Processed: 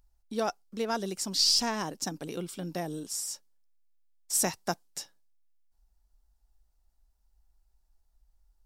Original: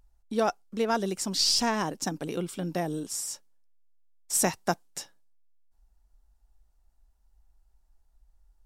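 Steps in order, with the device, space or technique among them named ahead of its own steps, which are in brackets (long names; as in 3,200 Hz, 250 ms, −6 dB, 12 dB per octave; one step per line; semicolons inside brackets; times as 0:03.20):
presence and air boost (parametric band 4,800 Hz +4.5 dB 0.85 octaves; high-shelf EQ 11,000 Hz +7 dB)
level −4.5 dB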